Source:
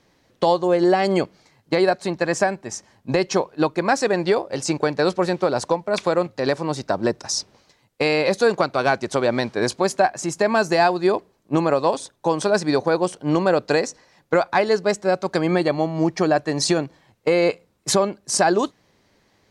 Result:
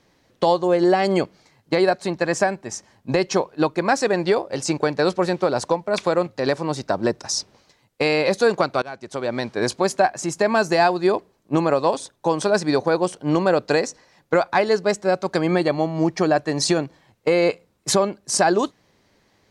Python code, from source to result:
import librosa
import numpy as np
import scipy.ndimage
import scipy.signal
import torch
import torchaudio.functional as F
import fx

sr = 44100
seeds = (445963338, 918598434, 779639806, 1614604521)

y = fx.edit(x, sr, fx.fade_in_from(start_s=8.82, length_s=0.88, floor_db=-21.5), tone=tone)